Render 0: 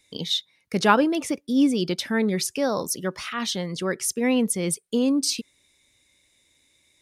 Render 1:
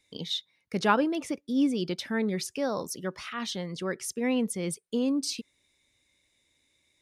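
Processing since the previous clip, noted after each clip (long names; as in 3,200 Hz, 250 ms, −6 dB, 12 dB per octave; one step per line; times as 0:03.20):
high-shelf EQ 6,900 Hz −6.5 dB
level −5.5 dB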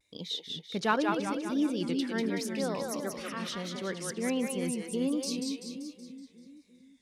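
echo with a time of its own for lows and highs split 360 Hz, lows 352 ms, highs 190 ms, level −4 dB
pitch vibrato 1.4 Hz 77 cents
level −4 dB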